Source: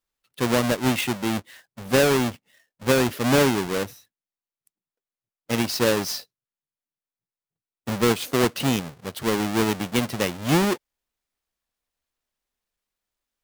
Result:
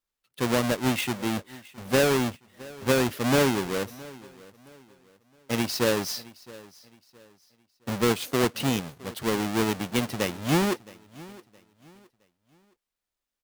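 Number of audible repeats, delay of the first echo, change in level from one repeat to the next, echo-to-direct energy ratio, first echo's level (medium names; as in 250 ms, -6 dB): 2, 667 ms, -9.5 dB, -20.5 dB, -21.0 dB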